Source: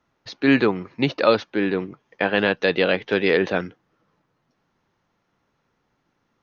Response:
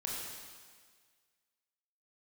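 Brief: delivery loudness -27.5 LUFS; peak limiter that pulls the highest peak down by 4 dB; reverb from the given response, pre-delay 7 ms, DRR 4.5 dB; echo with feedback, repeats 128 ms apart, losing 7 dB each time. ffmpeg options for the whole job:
-filter_complex "[0:a]alimiter=limit=0.422:level=0:latency=1,aecho=1:1:128|256|384|512|640:0.447|0.201|0.0905|0.0407|0.0183,asplit=2[s0][s1];[1:a]atrim=start_sample=2205,adelay=7[s2];[s1][s2]afir=irnorm=-1:irlink=0,volume=0.473[s3];[s0][s3]amix=inputs=2:normalize=0,volume=0.447"

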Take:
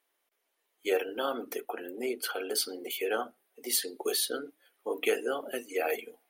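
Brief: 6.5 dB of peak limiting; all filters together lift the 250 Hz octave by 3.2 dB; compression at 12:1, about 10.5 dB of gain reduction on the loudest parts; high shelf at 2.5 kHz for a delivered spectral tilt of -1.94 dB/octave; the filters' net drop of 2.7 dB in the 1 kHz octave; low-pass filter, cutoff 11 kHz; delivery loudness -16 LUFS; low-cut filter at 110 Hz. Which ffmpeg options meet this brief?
-af "highpass=110,lowpass=11000,equalizer=f=250:t=o:g=5,equalizer=f=1000:t=o:g=-6,highshelf=f=2500:g=7,acompressor=threshold=0.0282:ratio=12,volume=12.6,alimiter=limit=0.596:level=0:latency=1"

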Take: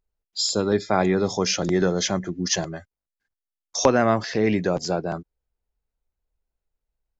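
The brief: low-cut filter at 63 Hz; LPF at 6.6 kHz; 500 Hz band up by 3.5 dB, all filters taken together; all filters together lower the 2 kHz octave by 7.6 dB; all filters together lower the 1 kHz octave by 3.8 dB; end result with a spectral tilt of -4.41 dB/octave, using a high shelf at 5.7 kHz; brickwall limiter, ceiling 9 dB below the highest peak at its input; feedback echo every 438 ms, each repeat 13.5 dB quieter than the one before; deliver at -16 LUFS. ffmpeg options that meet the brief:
-af "highpass=63,lowpass=6600,equalizer=f=500:t=o:g=6.5,equalizer=f=1000:t=o:g=-7.5,equalizer=f=2000:t=o:g=-8.5,highshelf=f=5700:g=6.5,alimiter=limit=0.266:level=0:latency=1,aecho=1:1:438|876:0.211|0.0444,volume=2.24"

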